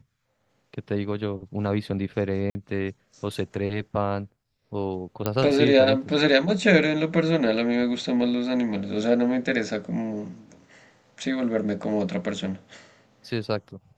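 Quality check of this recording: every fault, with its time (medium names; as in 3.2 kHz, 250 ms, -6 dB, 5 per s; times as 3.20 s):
2.50–2.55 s: dropout 50 ms
5.26 s: pop -10 dBFS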